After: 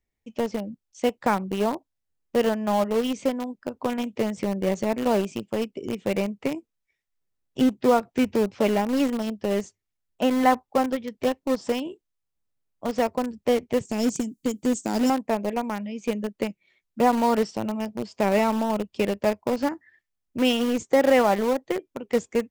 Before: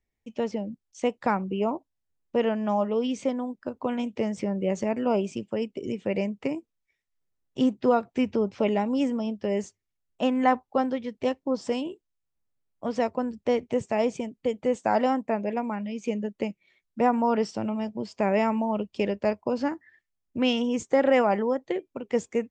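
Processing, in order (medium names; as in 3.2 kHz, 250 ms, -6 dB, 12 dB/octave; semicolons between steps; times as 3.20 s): 13.85–15.10 s: FFT filter 120 Hz 0 dB, 290 Hz +6 dB, 570 Hz -11 dB, 1.8 kHz -12 dB, 7.2 kHz +14 dB; in parallel at -10 dB: bit crusher 4-bit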